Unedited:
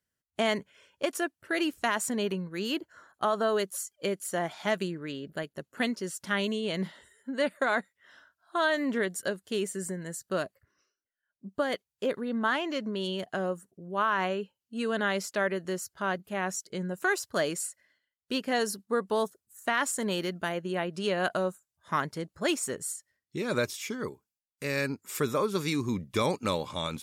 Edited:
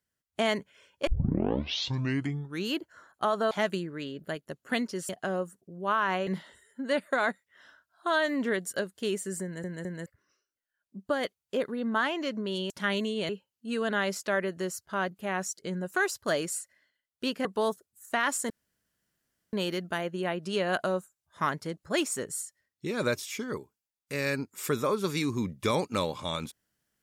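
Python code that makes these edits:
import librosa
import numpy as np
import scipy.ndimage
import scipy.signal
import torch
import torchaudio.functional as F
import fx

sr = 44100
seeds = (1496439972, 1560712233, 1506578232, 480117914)

y = fx.edit(x, sr, fx.tape_start(start_s=1.07, length_s=1.63),
    fx.cut(start_s=3.51, length_s=1.08),
    fx.swap(start_s=6.17, length_s=0.59, other_s=13.19, other_length_s=1.18),
    fx.stutter_over(start_s=9.92, slice_s=0.21, count=3),
    fx.cut(start_s=18.53, length_s=0.46),
    fx.insert_room_tone(at_s=20.04, length_s=1.03), tone=tone)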